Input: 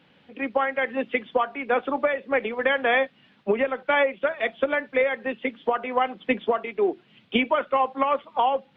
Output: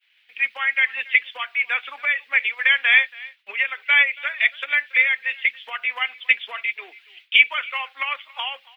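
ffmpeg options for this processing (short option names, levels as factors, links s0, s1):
-filter_complex "[0:a]aemphasis=mode=production:type=50fm,agate=range=0.0224:threshold=0.00316:ratio=3:detection=peak,highpass=f=2200:t=q:w=2.7,asplit=2[s0][s1];[s1]aecho=0:1:279:0.0794[s2];[s0][s2]amix=inputs=2:normalize=0,volume=1.41"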